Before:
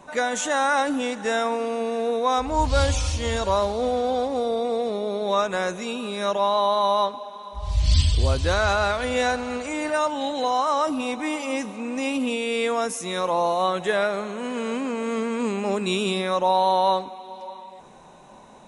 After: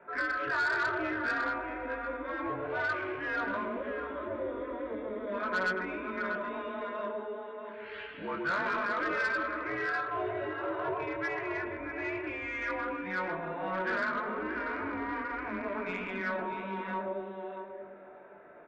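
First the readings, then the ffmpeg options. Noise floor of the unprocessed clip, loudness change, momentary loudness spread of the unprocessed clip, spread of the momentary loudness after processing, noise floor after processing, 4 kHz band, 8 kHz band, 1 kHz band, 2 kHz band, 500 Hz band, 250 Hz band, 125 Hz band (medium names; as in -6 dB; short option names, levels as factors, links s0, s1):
-47 dBFS, -10.0 dB, 8 LU, 10 LU, -47 dBFS, -19.0 dB, under -25 dB, -11.5 dB, -1.5 dB, -12.5 dB, -10.5 dB, -21.0 dB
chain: -filter_complex "[0:a]lowshelf=f=420:g=-8,asplit=2[s0][s1];[s1]adelay=130,lowpass=f=860:p=1,volume=0.708,asplit=2[s2][s3];[s3]adelay=130,lowpass=f=860:p=1,volume=0.54,asplit=2[s4][s5];[s5]adelay=130,lowpass=f=860:p=1,volume=0.54,asplit=2[s6][s7];[s7]adelay=130,lowpass=f=860:p=1,volume=0.54,asplit=2[s8][s9];[s9]adelay=130,lowpass=f=860:p=1,volume=0.54,asplit=2[s10][s11];[s11]adelay=130,lowpass=f=860:p=1,volume=0.54,asplit=2[s12][s13];[s13]adelay=130,lowpass=f=860:p=1,volume=0.54[s14];[s2][s4][s6][s8][s10][s12][s14]amix=inputs=7:normalize=0[s15];[s0][s15]amix=inputs=2:normalize=0,afftfilt=real='re*lt(hypot(re,im),0.316)':imag='im*lt(hypot(re,im),0.316)':win_size=1024:overlap=0.75,asuperstop=centerf=980:order=8:qfactor=7.8,equalizer=f=1700:t=o:w=0.32:g=11,highpass=f=400:t=q:w=0.5412,highpass=f=400:t=q:w=1.307,lowpass=f=2400:t=q:w=0.5176,lowpass=f=2400:t=q:w=0.7071,lowpass=f=2400:t=q:w=1.932,afreqshift=-180,flanger=delay=19:depth=2.2:speed=0.97,asplit=2[s16][s17];[s17]aecho=0:1:638:0.335[s18];[s16][s18]amix=inputs=2:normalize=0,asoftclip=type=tanh:threshold=0.0596"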